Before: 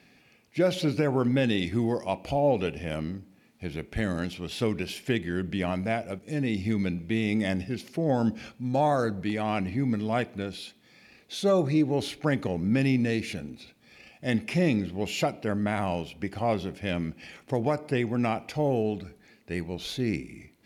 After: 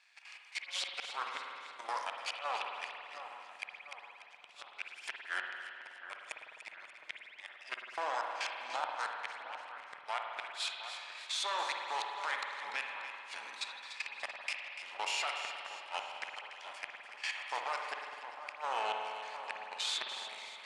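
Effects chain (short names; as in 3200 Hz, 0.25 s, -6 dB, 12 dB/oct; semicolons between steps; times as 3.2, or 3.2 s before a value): half-wave gain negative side -12 dB; recorder AGC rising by 9.6 dB/s; Chebyshev band-pass 950–8700 Hz, order 3; level quantiser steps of 16 dB; flange 0.15 Hz, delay 9.2 ms, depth 4.4 ms, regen +89%; flipped gate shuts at -40 dBFS, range -33 dB; split-band echo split 1800 Hz, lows 0.714 s, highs 0.292 s, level -11 dB; spring tank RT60 2.4 s, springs 51 ms, chirp 30 ms, DRR 2 dB; gain +16.5 dB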